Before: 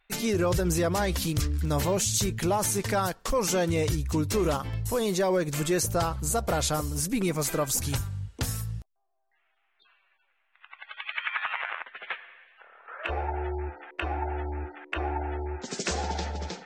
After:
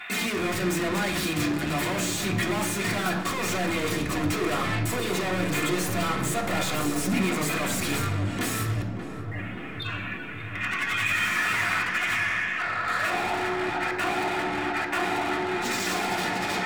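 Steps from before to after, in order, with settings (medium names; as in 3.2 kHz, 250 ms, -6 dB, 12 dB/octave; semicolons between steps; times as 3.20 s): overdrive pedal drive 27 dB, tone 3.8 kHz, clips at -13.5 dBFS; saturation -27.5 dBFS, distortion -10 dB; compression 2:1, threshold -40 dBFS, peak gain reduction 6 dB; waveshaping leveller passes 2; bass shelf 160 Hz +4 dB; filtered feedback delay 582 ms, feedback 79%, low-pass 1.4 kHz, level -9 dB; reverberation RT60 0.65 s, pre-delay 3 ms, DRR -3 dB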